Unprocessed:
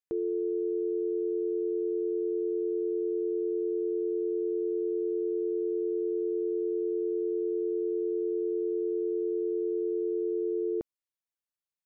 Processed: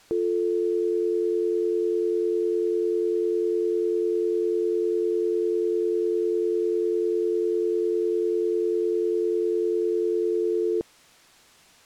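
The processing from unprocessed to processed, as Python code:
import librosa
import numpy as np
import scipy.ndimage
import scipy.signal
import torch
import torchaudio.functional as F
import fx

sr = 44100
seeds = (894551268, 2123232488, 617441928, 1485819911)

p1 = fx.quant_dither(x, sr, seeds[0], bits=8, dither='triangular')
p2 = x + (p1 * librosa.db_to_amplitude(-7.5))
p3 = fx.air_absorb(p2, sr, metres=50.0)
y = p3 * librosa.db_to_amplitude(3.0)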